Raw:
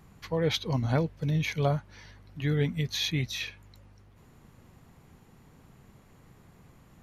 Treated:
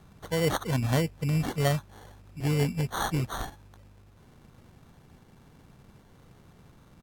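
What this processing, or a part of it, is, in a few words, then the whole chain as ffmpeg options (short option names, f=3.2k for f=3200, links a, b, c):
crushed at another speed: -af "asetrate=55125,aresample=44100,acrusher=samples=14:mix=1:aa=0.000001,asetrate=35280,aresample=44100,volume=1dB"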